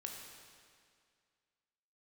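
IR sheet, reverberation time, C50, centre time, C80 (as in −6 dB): 2.1 s, 2.5 dB, 74 ms, 4.0 dB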